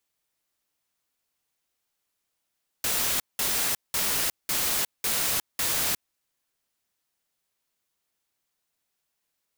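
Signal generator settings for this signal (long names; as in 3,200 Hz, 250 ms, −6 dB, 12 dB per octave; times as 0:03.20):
noise bursts white, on 0.36 s, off 0.19 s, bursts 6, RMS −26 dBFS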